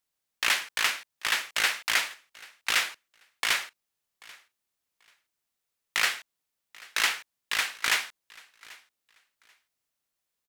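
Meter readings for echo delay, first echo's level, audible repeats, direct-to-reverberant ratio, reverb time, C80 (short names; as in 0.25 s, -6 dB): 0.787 s, -23.0 dB, 1, none, none, none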